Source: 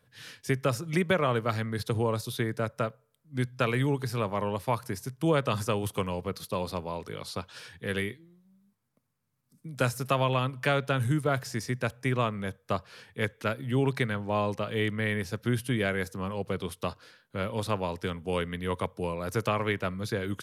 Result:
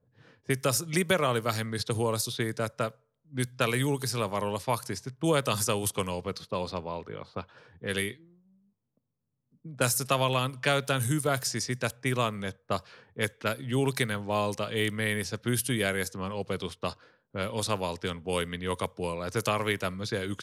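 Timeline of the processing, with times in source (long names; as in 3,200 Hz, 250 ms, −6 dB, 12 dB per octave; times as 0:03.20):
0:06.51–0:07.58: high-shelf EQ 5,700 Hz −11.5 dB
whole clip: low-pass that shuts in the quiet parts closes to 540 Hz, open at −25.5 dBFS; bass and treble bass −2 dB, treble +14 dB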